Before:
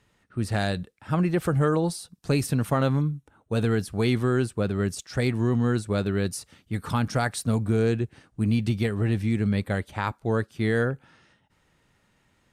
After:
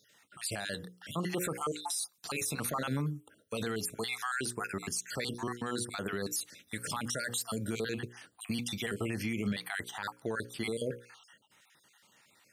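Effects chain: random holes in the spectrogram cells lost 43%; high-pass 110 Hz; tilt EQ +3 dB/octave; hum notches 60/120/180/240/300/360/420/480/540 Hz; peak limiter -26.5 dBFS, peak gain reduction 14.5 dB; trim +2 dB

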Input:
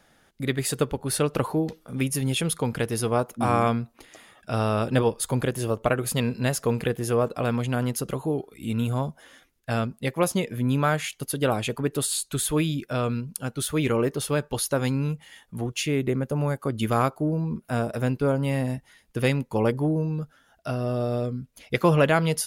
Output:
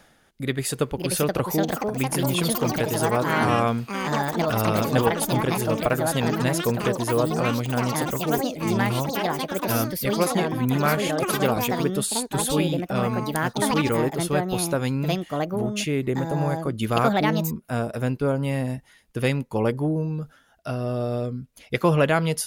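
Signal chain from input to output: ever faster or slower copies 681 ms, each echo +5 st, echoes 3; reverse; upward compressor, threshold -39 dBFS; reverse

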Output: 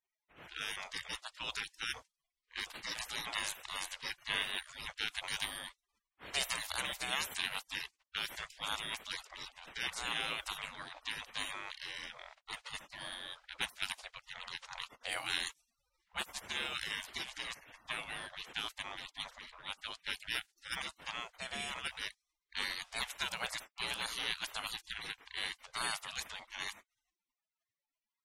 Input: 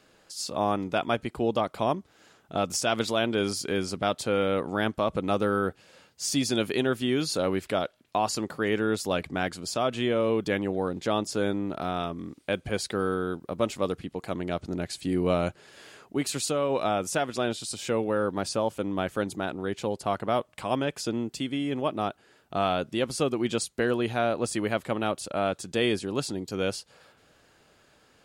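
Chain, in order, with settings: spectral gate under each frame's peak -30 dB weak; level-controlled noise filter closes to 1.9 kHz, open at -46.5 dBFS; trim +11 dB

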